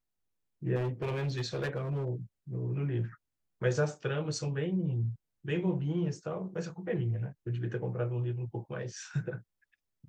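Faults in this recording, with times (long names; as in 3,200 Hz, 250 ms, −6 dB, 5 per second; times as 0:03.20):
0:00.75–0:02.09: clipping −29 dBFS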